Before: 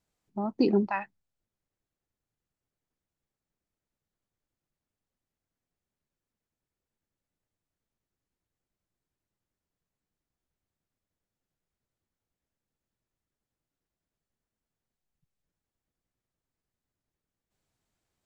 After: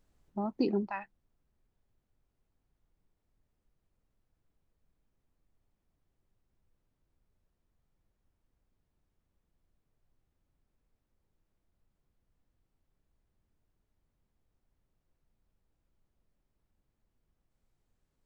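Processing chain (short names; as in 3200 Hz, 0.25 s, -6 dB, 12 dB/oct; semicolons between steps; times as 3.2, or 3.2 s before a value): added noise brown -68 dBFS; vocal rider within 4 dB 0.5 s; gain -4 dB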